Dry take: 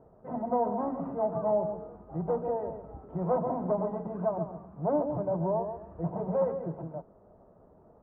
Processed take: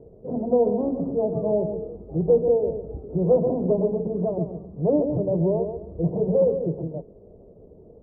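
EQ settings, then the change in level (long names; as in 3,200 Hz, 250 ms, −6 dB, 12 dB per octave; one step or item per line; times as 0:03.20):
low-pass with resonance 450 Hz, resonance Q 3.4
low-shelf EQ 190 Hz +11 dB
+1.5 dB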